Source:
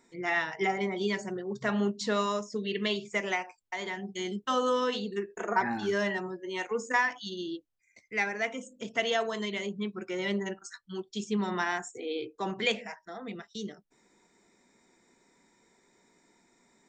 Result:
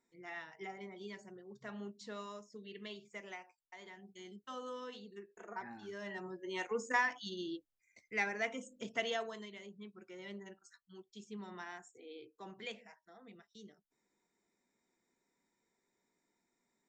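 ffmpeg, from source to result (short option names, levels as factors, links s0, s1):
-af "volume=0.531,afade=t=in:st=6.01:d=0.45:silence=0.251189,afade=t=out:st=8.84:d=0.66:silence=0.266073"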